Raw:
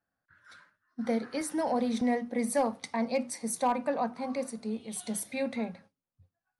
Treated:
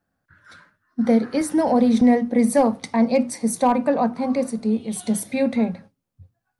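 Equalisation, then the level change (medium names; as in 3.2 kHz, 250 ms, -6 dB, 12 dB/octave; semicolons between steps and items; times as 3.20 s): bass shelf 480 Hz +9.5 dB; hum notches 60/120 Hz; +6.0 dB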